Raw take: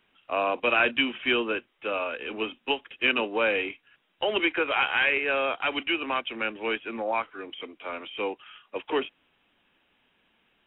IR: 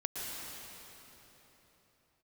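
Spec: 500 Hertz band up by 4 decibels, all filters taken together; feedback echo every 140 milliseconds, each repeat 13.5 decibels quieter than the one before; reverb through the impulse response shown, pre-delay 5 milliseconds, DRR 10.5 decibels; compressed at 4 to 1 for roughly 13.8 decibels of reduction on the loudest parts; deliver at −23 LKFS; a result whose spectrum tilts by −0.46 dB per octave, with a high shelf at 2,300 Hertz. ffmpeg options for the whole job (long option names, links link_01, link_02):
-filter_complex "[0:a]equalizer=frequency=500:width_type=o:gain=5,highshelf=frequency=2300:gain=-4.5,acompressor=threshold=-36dB:ratio=4,aecho=1:1:140|280:0.211|0.0444,asplit=2[link_01][link_02];[1:a]atrim=start_sample=2205,adelay=5[link_03];[link_02][link_03]afir=irnorm=-1:irlink=0,volume=-14dB[link_04];[link_01][link_04]amix=inputs=2:normalize=0,volume=15dB"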